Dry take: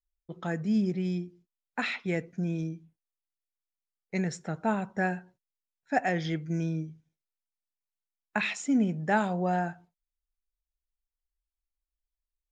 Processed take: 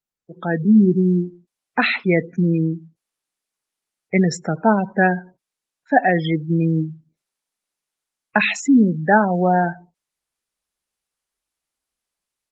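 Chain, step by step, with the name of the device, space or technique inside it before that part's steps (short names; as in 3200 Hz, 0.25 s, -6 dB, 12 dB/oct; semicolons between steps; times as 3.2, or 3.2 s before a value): noise-suppressed video call (HPF 150 Hz 12 dB/oct; spectral gate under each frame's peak -20 dB strong; AGC gain up to 15.5 dB; Opus 20 kbps 48000 Hz)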